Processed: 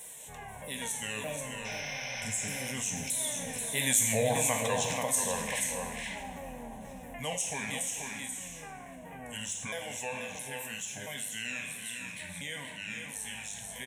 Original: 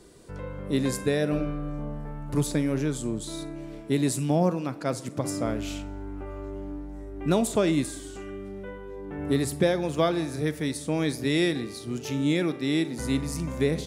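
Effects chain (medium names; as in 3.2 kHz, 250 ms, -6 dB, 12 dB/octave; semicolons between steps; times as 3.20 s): sawtooth pitch modulation -7.5 st, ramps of 646 ms; Doppler pass-by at 4.29 s, 14 m/s, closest 5.1 m; RIAA curve recording; spectral replace 1.68–2.64 s, 520–6300 Hz after; bass shelf 500 Hz -5.5 dB; static phaser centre 1.3 kHz, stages 6; multi-tap echo 434/484 ms -17/-8.5 dB; two-slope reverb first 0.84 s, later 2.7 s, from -25 dB, DRR 5.5 dB; level flattener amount 50%; trim +5 dB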